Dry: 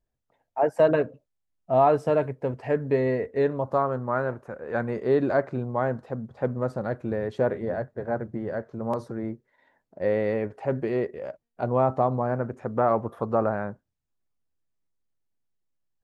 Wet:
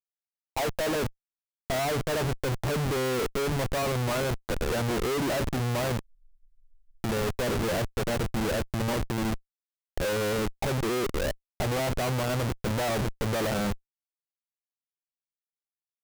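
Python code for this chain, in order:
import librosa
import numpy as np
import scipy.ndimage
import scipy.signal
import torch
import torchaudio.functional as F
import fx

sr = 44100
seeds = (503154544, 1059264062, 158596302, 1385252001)

y = fx.schmitt(x, sr, flips_db=-35.0)
y = fx.spec_freeze(y, sr, seeds[0], at_s=6.03, hold_s=0.96)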